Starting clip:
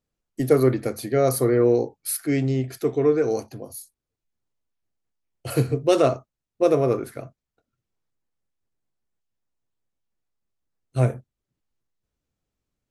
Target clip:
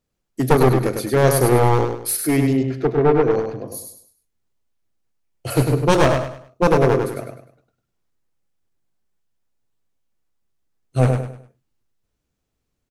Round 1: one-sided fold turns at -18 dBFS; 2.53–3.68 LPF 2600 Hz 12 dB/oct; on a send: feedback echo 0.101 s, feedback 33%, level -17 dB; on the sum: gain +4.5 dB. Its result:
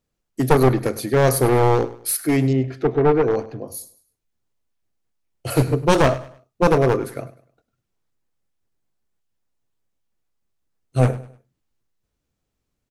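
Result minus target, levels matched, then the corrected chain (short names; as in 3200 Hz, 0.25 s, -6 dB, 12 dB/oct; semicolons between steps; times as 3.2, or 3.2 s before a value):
echo-to-direct -11.5 dB
one-sided fold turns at -18 dBFS; 2.53–3.68 LPF 2600 Hz 12 dB/oct; on a send: feedback echo 0.101 s, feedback 33%, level -5.5 dB; on the sum: gain +4.5 dB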